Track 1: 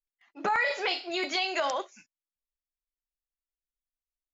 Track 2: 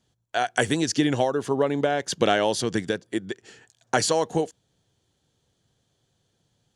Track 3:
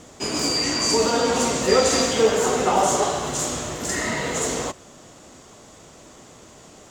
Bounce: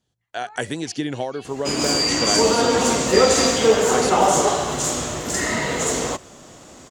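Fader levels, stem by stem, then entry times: -18.0 dB, -4.0 dB, +2.5 dB; 0.00 s, 0.00 s, 1.45 s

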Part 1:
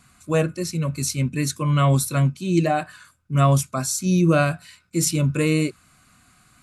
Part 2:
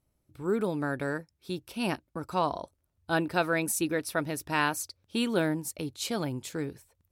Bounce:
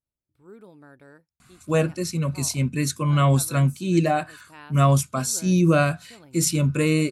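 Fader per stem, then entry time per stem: -0.5 dB, -18.0 dB; 1.40 s, 0.00 s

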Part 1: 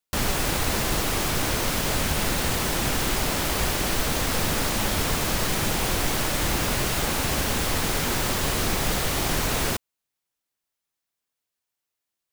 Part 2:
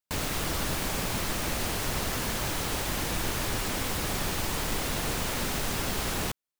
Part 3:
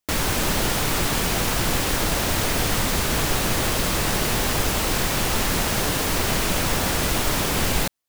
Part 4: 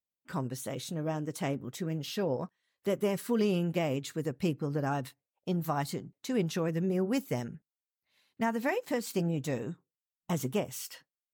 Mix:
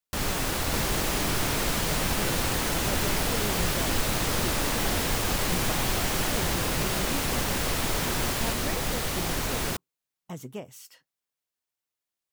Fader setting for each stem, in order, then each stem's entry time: -4.5 dB, -4.5 dB, -10.0 dB, -7.0 dB; 0.00 s, 0.10 s, 0.65 s, 0.00 s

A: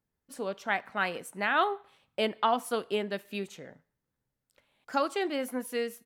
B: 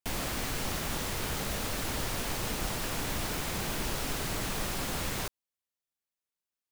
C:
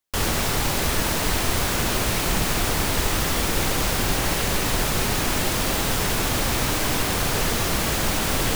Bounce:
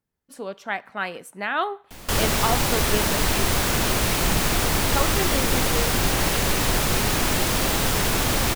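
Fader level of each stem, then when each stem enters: +1.5 dB, -8.0 dB, +1.0 dB; 0.00 s, 1.85 s, 1.95 s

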